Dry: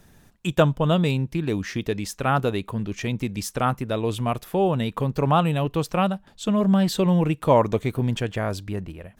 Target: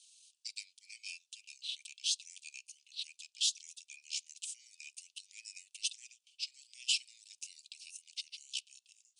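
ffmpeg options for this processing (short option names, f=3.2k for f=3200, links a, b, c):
-af "asetrate=28595,aresample=44100,atempo=1.54221,asuperpass=centerf=5400:order=20:qfactor=0.74,highshelf=f=4.3k:g=7,volume=-1dB"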